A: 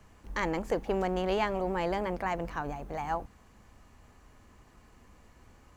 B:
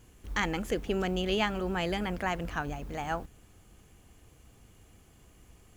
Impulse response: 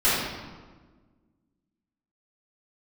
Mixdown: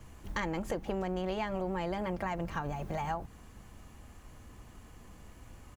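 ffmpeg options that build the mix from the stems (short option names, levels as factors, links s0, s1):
-filter_complex "[0:a]lowshelf=f=320:g=4.5,bandreject=f=400:w=12,volume=1.12[s0];[1:a]acompressor=threshold=0.0178:ratio=6,volume=-1,adelay=3.7,volume=0.891[s1];[s0][s1]amix=inputs=2:normalize=0,acompressor=threshold=0.0282:ratio=6"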